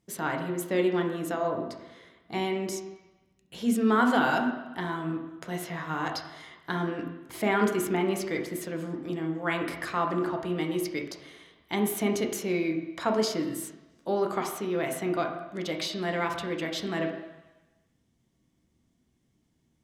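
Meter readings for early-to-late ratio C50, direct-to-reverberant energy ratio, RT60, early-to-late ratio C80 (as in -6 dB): 6.0 dB, 1.5 dB, 1.1 s, 8.5 dB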